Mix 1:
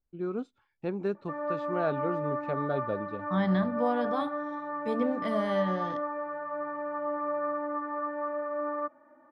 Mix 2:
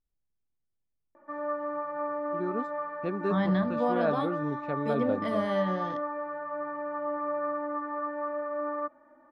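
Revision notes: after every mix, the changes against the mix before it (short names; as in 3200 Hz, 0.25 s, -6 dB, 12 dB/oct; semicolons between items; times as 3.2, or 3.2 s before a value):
first voice: entry +2.20 s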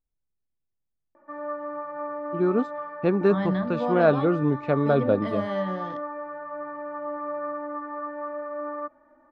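first voice +10.5 dB; master: add air absorption 53 m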